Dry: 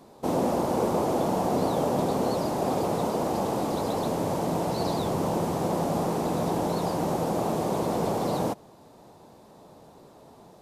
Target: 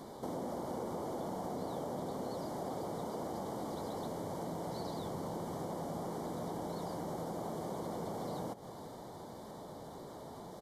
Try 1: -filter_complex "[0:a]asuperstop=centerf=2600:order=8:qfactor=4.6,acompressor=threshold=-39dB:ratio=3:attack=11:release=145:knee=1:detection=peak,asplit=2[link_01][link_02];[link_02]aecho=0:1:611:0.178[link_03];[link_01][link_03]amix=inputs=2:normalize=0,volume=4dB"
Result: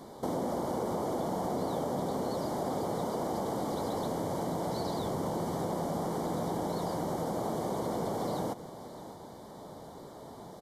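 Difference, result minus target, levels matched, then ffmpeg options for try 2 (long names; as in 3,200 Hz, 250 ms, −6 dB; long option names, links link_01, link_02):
echo 181 ms late; downward compressor: peak gain reduction −7 dB
-filter_complex "[0:a]asuperstop=centerf=2600:order=8:qfactor=4.6,acompressor=threshold=-49.5dB:ratio=3:attack=11:release=145:knee=1:detection=peak,asplit=2[link_01][link_02];[link_02]aecho=0:1:430:0.178[link_03];[link_01][link_03]amix=inputs=2:normalize=0,volume=4dB"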